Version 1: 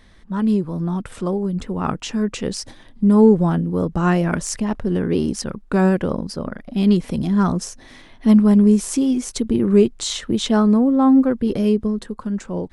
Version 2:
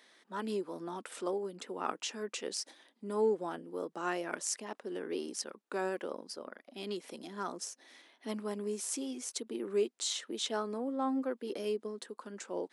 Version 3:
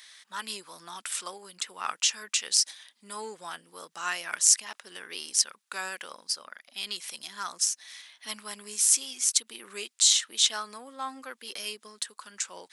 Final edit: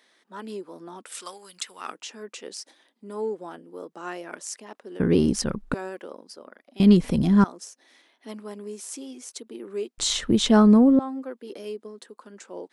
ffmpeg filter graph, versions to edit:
-filter_complex "[0:a]asplit=3[s0][s1][s2];[1:a]asplit=5[s3][s4][s5][s6][s7];[s3]atrim=end=1.28[s8];[2:a]atrim=start=1.04:end=1.99[s9];[s4]atrim=start=1.75:end=5.002[s10];[s0]atrim=start=4.998:end=5.742[s11];[s5]atrim=start=5.738:end=6.802[s12];[s1]atrim=start=6.798:end=7.442[s13];[s6]atrim=start=7.438:end=9.982[s14];[s2]atrim=start=9.978:end=10.992[s15];[s7]atrim=start=10.988[s16];[s8][s9]acrossfade=d=0.24:c1=tri:c2=tri[s17];[s17][s10]acrossfade=d=0.24:c1=tri:c2=tri[s18];[s18][s11]acrossfade=d=0.004:c1=hsin:c2=hsin[s19];[s19][s12]acrossfade=d=0.004:c1=hsin:c2=hsin[s20];[s20][s13]acrossfade=d=0.004:c1=hsin:c2=hsin[s21];[s21][s14]acrossfade=d=0.004:c1=hsin:c2=hsin[s22];[s22][s15]acrossfade=d=0.004:c1=hsin:c2=hsin[s23];[s23][s16]acrossfade=d=0.004:c1=hsin:c2=hsin"

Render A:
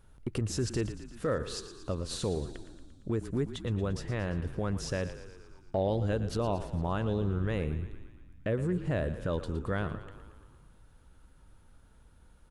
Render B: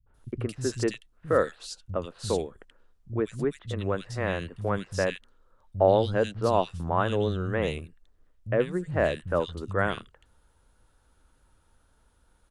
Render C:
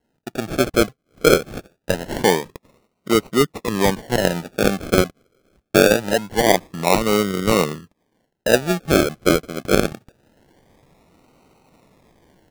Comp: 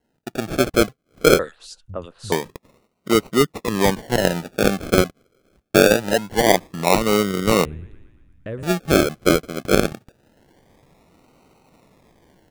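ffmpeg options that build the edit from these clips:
-filter_complex "[2:a]asplit=3[s0][s1][s2];[s0]atrim=end=1.392[s3];[1:a]atrim=start=1.388:end=2.322[s4];[s1]atrim=start=2.318:end=7.652[s5];[0:a]atrim=start=7.648:end=8.632[s6];[s2]atrim=start=8.628[s7];[s3][s4]acrossfade=d=0.004:c1=hsin:c2=hsin[s8];[s8][s5]acrossfade=d=0.004:c1=hsin:c2=hsin[s9];[s9][s6]acrossfade=d=0.004:c1=hsin:c2=hsin[s10];[s10][s7]acrossfade=d=0.004:c1=hsin:c2=hsin"

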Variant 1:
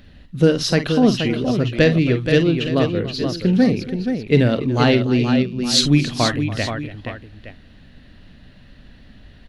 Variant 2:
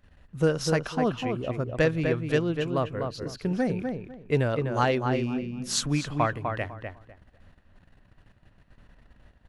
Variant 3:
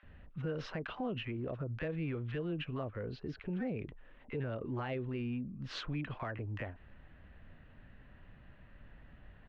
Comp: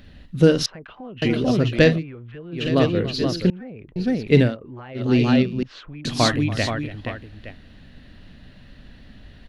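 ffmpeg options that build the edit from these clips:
-filter_complex "[2:a]asplit=5[s0][s1][s2][s3][s4];[0:a]asplit=6[s5][s6][s7][s8][s9][s10];[s5]atrim=end=0.662[s11];[s0]atrim=start=0.658:end=1.222[s12];[s6]atrim=start=1.218:end=2.04[s13];[s1]atrim=start=1.88:end=2.67[s14];[s7]atrim=start=2.51:end=3.502[s15];[s2]atrim=start=3.498:end=3.962[s16];[s8]atrim=start=3.958:end=4.57[s17];[s3]atrim=start=4.41:end=5.1[s18];[s9]atrim=start=4.94:end=5.632[s19];[s4]atrim=start=5.628:end=6.052[s20];[s10]atrim=start=6.048[s21];[s11][s12]acrossfade=d=0.004:c1=hsin:c2=hsin[s22];[s22][s13]acrossfade=d=0.004:c1=hsin:c2=hsin[s23];[s23][s14]acrossfade=d=0.16:c1=tri:c2=tri[s24];[s24][s15]acrossfade=d=0.16:c1=tri:c2=tri[s25];[s25][s16]acrossfade=d=0.004:c1=hsin:c2=hsin[s26];[s26][s17]acrossfade=d=0.004:c1=hsin:c2=hsin[s27];[s27][s18]acrossfade=d=0.16:c1=tri:c2=tri[s28];[s28][s19]acrossfade=d=0.16:c1=tri:c2=tri[s29];[s29][s20]acrossfade=d=0.004:c1=hsin:c2=hsin[s30];[s30][s21]acrossfade=d=0.004:c1=hsin:c2=hsin"

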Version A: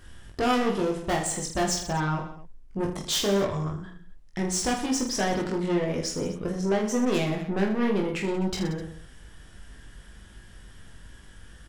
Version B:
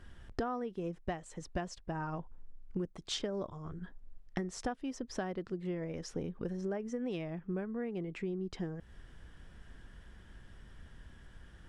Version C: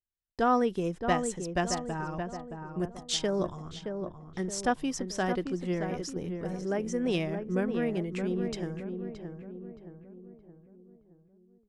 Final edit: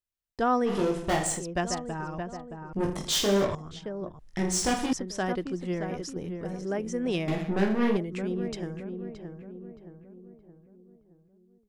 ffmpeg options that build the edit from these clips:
-filter_complex "[0:a]asplit=4[s0][s1][s2][s3];[2:a]asplit=5[s4][s5][s6][s7][s8];[s4]atrim=end=0.74[s9];[s0]atrim=start=0.64:end=1.44[s10];[s5]atrim=start=1.34:end=2.732[s11];[s1]atrim=start=2.728:end=3.552[s12];[s6]atrim=start=3.548:end=4.192[s13];[s2]atrim=start=4.188:end=4.932[s14];[s7]atrim=start=4.928:end=7.282[s15];[s3]atrim=start=7.278:end=7.972[s16];[s8]atrim=start=7.968[s17];[s9][s10]acrossfade=d=0.1:c1=tri:c2=tri[s18];[s18][s11]acrossfade=d=0.1:c1=tri:c2=tri[s19];[s19][s12]acrossfade=d=0.004:c1=hsin:c2=hsin[s20];[s20][s13]acrossfade=d=0.004:c1=hsin:c2=hsin[s21];[s21][s14]acrossfade=d=0.004:c1=hsin:c2=hsin[s22];[s22][s15]acrossfade=d=0.004:c1=hsin:c2=hsin[s23];[s23][s16]acrossfade=d=0.004:c1=hsin:c2=hsin[s24];[s24][s17]acrossfade=d=0.004:c1=hsin:c2=hsin"

